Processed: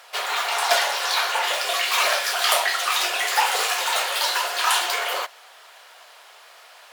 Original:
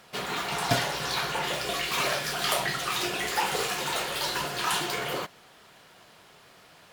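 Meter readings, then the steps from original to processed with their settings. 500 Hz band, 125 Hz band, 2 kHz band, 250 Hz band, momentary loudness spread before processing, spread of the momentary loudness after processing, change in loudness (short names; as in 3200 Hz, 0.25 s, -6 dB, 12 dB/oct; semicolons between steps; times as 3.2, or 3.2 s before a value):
+3.5 dB, under -35 dB, +7.5 dB, under -10 dB, 4 LU, 5 LU, +7.0 dB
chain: HPF 580 Hz 24 dB/oct; gain +7.5 dB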